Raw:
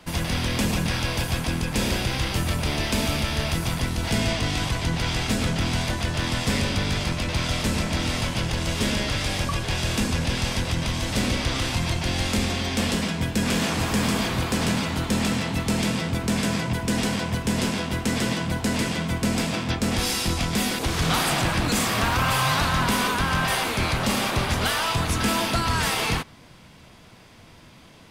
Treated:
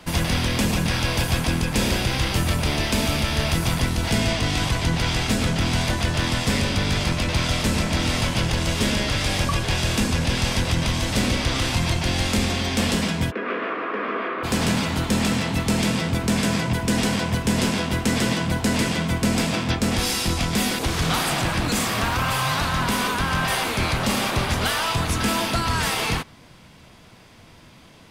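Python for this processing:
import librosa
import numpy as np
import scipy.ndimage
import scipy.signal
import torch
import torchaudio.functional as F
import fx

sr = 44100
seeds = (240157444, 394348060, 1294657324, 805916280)

y = fx.rider(x, sr, range_db=10, speed_s=0.5)
y = fx.cabinet(y, sr, low_hz=320.0, low_slope=24, high_hz=2200.0, hz=(410.0, 840.0, 1200.0), db=(4, -10, 8), at=(13.3, 14.43), fade=0.02)
y = F.gain(torch.from_numpy(y), 2.0).numpy()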